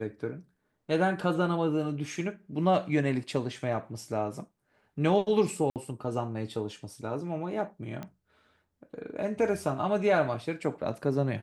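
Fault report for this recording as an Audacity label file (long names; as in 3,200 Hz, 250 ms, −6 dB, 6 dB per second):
5.700000	5.760000	drop-out 58 ms
8.030000	8.030000	click −25 dBFS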